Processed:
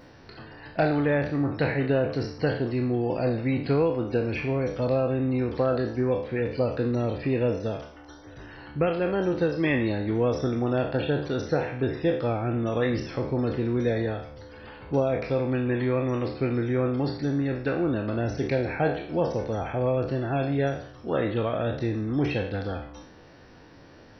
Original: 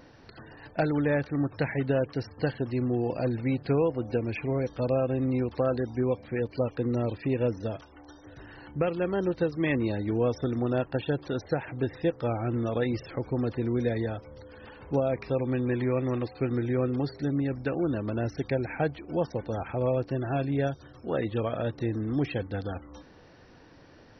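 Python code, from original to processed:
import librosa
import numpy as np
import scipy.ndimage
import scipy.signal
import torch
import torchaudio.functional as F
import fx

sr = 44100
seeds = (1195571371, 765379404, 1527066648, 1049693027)

y = fx.spec_trails(x, sr, decay_s=0.58)
y = F.gain(torch.from_numpy(y), 1.5).numpy()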